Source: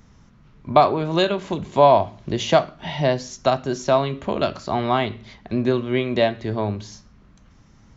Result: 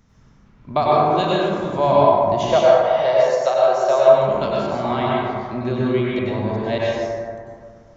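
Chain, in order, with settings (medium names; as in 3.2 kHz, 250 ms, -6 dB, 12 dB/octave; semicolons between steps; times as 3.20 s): 2.39–4.08 s: resonant low shelf 350 Hz -13.5 dB, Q 3; 6.19–6.78 s: reverse; plate-style reverb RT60 2.1 s, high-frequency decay 0.35×, pre-delay 85 ms, DRR -6 dB; trim -6 dB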